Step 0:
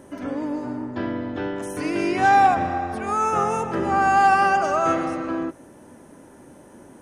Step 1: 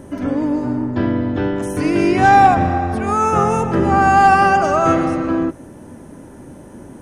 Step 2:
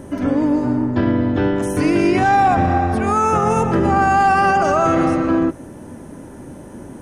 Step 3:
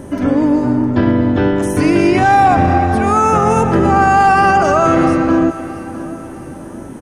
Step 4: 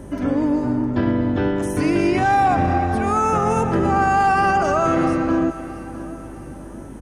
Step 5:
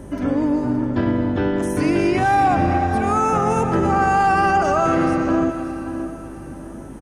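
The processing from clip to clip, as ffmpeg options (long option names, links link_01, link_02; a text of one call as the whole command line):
ffmpeg -i in.wav -af "lowshelf=frequency=230:gain=11.5,volume=4.5dB" out.wav
ffmpeg -i in.wav -af "alimiter=limit=-9.5dB:level=0:latency=1:release=32,volume=2dB" out.wav
ffmpeg -i in.wav -af "aecho=1:1:661|1322|1983:0.168|0.0655|0.0255,volume=4dB" out.wav
ffmpeg -i in.wav -af "aeval=exprs='val(0)+0.0224*(sin(2*PI*50*n/s)+sin(2*PI*2*50*n/s)/2+sin(2*PI*3*50*n/s)/3+sin(2*PI*4*50*n/s)/4+sin(2*PI*5*50*n/s)/5)':channel_layout=same,volume=-6.5dB" out.wav
ffmpeg -i in.wav -af "aecho=1:1:573:0.237" out.wav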